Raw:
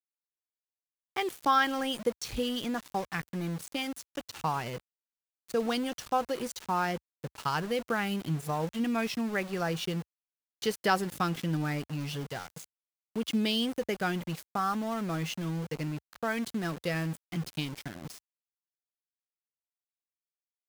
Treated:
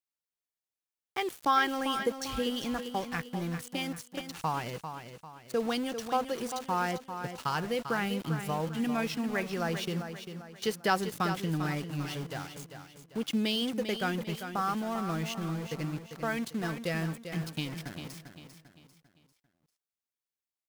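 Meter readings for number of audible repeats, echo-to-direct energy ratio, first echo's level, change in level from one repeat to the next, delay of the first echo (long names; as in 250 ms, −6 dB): 4, −8.0 dB, −9.0 dB, −8.0 dB, 396 ms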